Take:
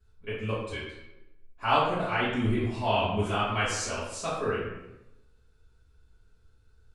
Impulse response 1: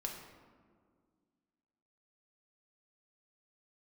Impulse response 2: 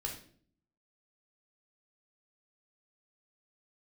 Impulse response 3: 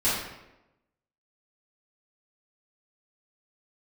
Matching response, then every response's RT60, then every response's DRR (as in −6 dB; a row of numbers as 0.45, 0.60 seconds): 3; 1.9, 0.50, 0.95 seconds; 0.5, 0.5, −11.5 decibels